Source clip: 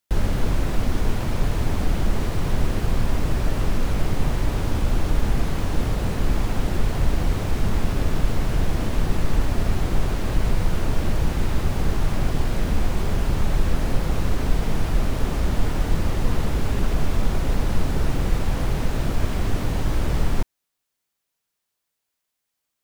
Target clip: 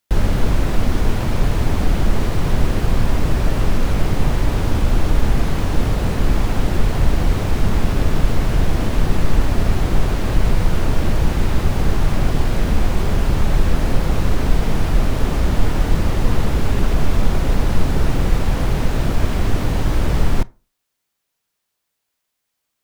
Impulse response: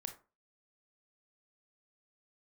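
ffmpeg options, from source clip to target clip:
-filter_complex "[0:a]asplit=2[a][b];[1:a]atrim=start_sample=2205,lowpass=6.6k[c];[b][c]afir=irnorm=-1:irlink=0,volume=-11dB[d];[a][d]amix=inputs=2:normalize=0,volume=3.5dB"

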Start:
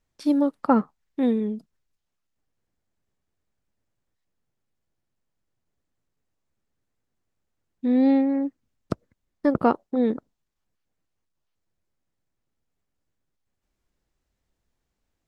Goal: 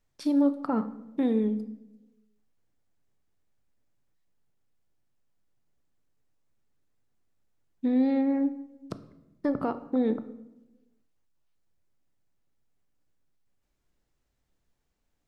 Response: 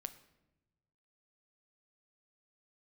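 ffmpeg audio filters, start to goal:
-filter_complex "[0:a]alimiter=limit=-18.5dB:level=0:latency=1:release=101[a];[1:a]atrim=start_sample=2205[b];[a][b]afir=irnorm=-1:irlink=0,volume=3dB"

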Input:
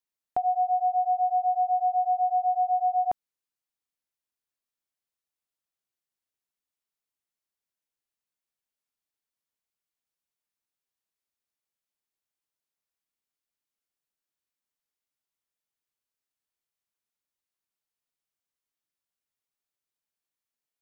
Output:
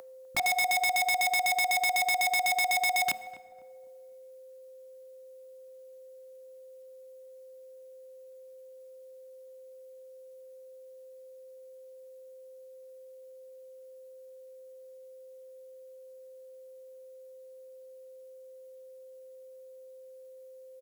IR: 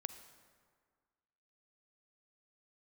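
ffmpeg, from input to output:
-filter_complex "[0:a]aemphasis=mode=production:type=cd,aeval=exprs='val(0)+0.00355*sin(2*PI*520*n/s)':c=same,equalizer=f=520:w=2.9:g=-7.5,acrossover=split=150|450[a][b][c];[a]asetrate=83250,aresample=44100,atempo=0.529732[d];[c]acompressor=mode=upward:threshold=-47dB:ratio=2.5[e];[d][b][e]amix=inputs=3:normalize=0,asoftclip=type=tanh:threshold=-26dB,bandreject=f=223.4:t=h:w=4,bandreject=f=446.8:t=h:w=4,bandreject=f=670.2:t=h:w=4,bandreject=f=893.6:t=h:w=4,bandreject=f=1.117k:t=h:w=4,bandreject=f=1.3404k:t=h:w=4,bandreject=f=1.5638k:t=h:w=4,bandreject=f=1.7872k:t=h:w=4,bandreject=f=2.0106k:t=h:w=4,bandreject=f=2.234k:t=h:w=4,bandreject=f=2.4574k:t=h:w=4,bandreject=f=2.6808k:t=h:w=4,bandreject=f=2.9042k:t=h:w=4,bandreject=f=3.1276k:t=h:w=4,bandreject=f=3.351k:t=h:w=4,bandreject=f=3.5744k:t=h:w=4,bandreject=f=3.7978k:t=h:w=4,bandreject=f=4.0212k:t=h:w=4,bandreject=f=4.2446k:t=h:w=4,bandreject=f=4.468k:t=h:w=4,bandreject=f=4.6914k:t=h:w=4,bandreject=f=4.9148k:t=h:w=4,bandreject=f=5.1382k:t=h:w=4,bandreject=f=5.3616k:t=h:w=4,bandreject=f=5.585k:t=h:w=4,bandreject=f=5.8084k:t=h:w=4,bandreject=f=6.0318k:t=h:w=4,bandreject=f=6.2552k:t=h:w=4,bandreject=f=6.4786k:t=h:w=4,aeval=exprs='(mod(22.4*val(0)+1,2)-1)/22.4':c=same,asplit=2[f][g];[g]adelay=251,lowpass=f=960:p=1,volume=-14.5dB,asplit=2[h][i];[i]adelay=251,lowpass=f=960:p=1,volume=0.42,asplit=2[j][k];[k]adelay=251,lowpass=f=960:p=1,volume=0.42,asplit=2[l][m];[m]adelay=251,lowpass=f=960:p=1,volume=0.42[n];[f][h][j][l][n]amix=inputs=5:normalize=0,asplit=2[o][p];[1:a]atrim=start_sample=2205[q];[p][q]afir=irnorm=-1:irlink=0,volume=-4dB[r];[o][r]amix=inputs=2:normalize=0"

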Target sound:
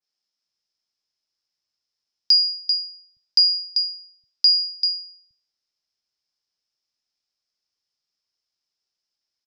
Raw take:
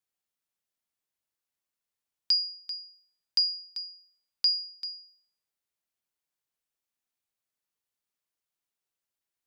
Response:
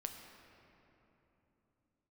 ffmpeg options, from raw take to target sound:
-filter_complex "[0:a]lowpass=f=5.2k:t=q:w=11,acrossover=split=160|2900[a][b][c];[b]acompressor=threshold=-42dB:ratio=6[d];[c]alimiter=limit=-7.5dB:level=0:latency=1:release=186[e];[a][d][e]amix=inputs=3:normalize=0,equalizer=f=140:t=o:w=2:g=3,acrossover=split=160[f][g];[f]adelay=470[h];[h][g]amix=inputs=2:normalize=0,adynamicequalizer=threshold=0.0251:dfrequency=2400:dqfactor=0.7:tfrequency=2400:tqfactor=0.7:attack=5:release=100:ratio=0.375:range=2:mode=cutabove:tftype=highshelf"

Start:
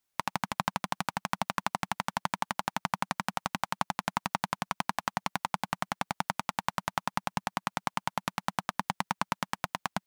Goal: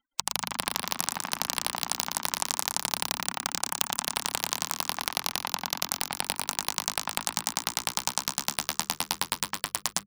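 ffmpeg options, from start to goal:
-filter_complex "[0:a]highshelf=f=4k:g=-8.5,aeval=exprs='(mod(4.47*val(0)+1,2)-1)/4.47':c=same,acompressor=mode=upward:threshold=-33dB:ratio=2.5,afftfilt=real='re*gte(hypot(re,im),0.00355)':imag='im*gte(hypot(re,im),0.00355)':win_size=1024:overlap=0.75,highshelf=f=9.1k:g=-7,afftdn=nr=16:nf=-50,asplit=8[a][b][c][d][e][f][g][h];[b]adelay=116,afreqshift=44,volume=-5dB[i];[c]adelay=232,afreqshift=88,volume=-10.5dB[j];[d]adelay=348,afreqshift=132,volume=-16dB[k];[e]adelay=464,afreqshift=176,volume=-21.5dB[l];[f]adelay=580,afreqshift=220,volume=-27.1dB[m];[g]adelay=696,afreqshift=264,volume=-32.6dB[n];[h]adelay=812,afreqshift=308,volume=-38.1dB[o];[a][i][j][k][l][m][n][o]amix=inputs=8:normalize=0,crystalizer=i=5.5:c=0,bandreject=f=50:t=h:w=6,bandreject=f=100:t=h:w=6,bandreject=f=150:t=h:w=6,bandreject=f=200:t=h:w=6,volume=-4dB"

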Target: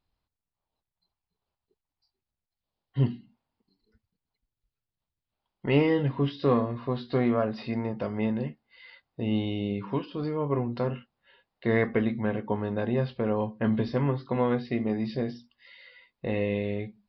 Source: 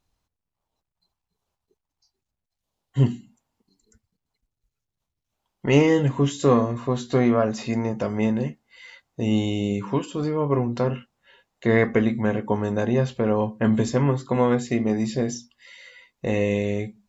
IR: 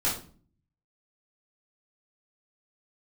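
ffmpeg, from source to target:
-af "aresample=11025,aresample=44100,volume=-5.5dB"

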